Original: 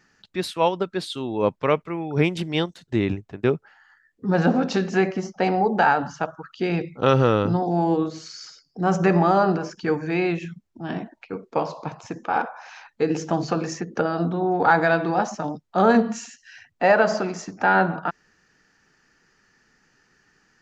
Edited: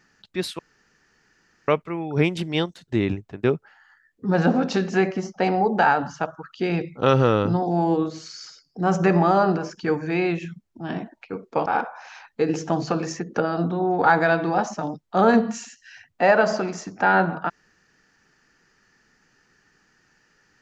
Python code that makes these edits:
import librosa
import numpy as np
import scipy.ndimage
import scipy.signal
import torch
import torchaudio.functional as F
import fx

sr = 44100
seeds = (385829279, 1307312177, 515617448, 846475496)

y = fx.edit(x, sr, fx.room_tone_fill(start_s=0.59, length_s=1.09),
    fx.cut(start_s=11.66, length_s=0.61), tone=tone)